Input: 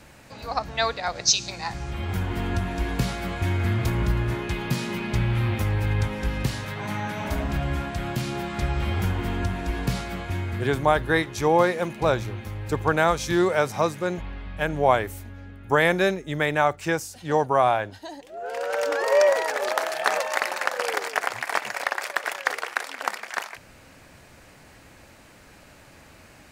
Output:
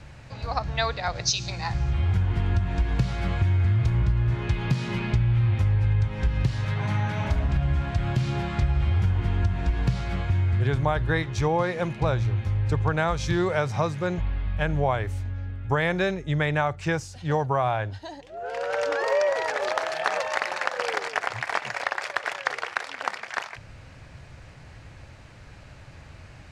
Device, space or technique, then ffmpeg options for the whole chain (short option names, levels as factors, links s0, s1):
jukebox: -af "lowpass=5800,lowshelf=f=170:t=q:w=1.5:g=8.5,acompressor=threshold=0.1:ratio=4"